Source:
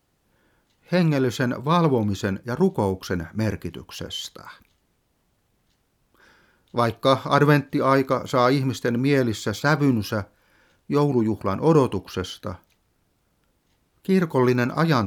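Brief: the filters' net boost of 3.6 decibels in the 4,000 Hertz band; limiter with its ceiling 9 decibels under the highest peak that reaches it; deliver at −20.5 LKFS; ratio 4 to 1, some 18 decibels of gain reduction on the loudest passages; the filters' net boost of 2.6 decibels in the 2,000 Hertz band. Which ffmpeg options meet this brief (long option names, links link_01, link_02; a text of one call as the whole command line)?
ffmpeg -i in.wav -af "equalizer=frequency=2000:width_type=o:gain=3,equalizer=frequency=4000:width_type=o:gain=3.5,acompressor=threshold=-35dB:ratio=4,volume=18.5dB,alimiter=limit=-9.5dB:level=0:latency=1" out.wav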